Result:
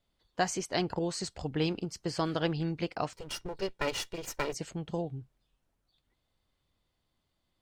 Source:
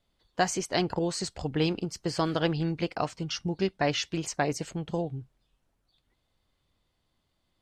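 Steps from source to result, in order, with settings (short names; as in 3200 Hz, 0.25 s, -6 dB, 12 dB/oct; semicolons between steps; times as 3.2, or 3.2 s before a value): 3.13–4.54 minimum comb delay 2.1 ms; gain -3.5 dB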